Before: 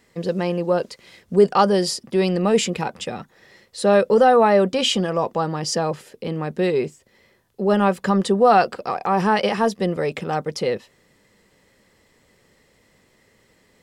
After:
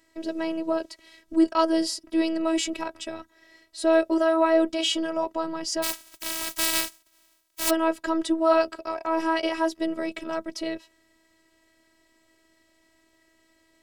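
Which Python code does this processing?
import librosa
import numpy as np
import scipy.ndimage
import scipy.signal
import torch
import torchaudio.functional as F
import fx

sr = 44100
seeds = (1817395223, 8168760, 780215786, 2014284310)

y = fx.spec_flatten(x, sr, power=0.11, at=(5.82, 7.69), fade=0.02)
y = fx.robotise(y, sr, hz=325.0)
y = y * librosa.db_to_amplitude(-2.5)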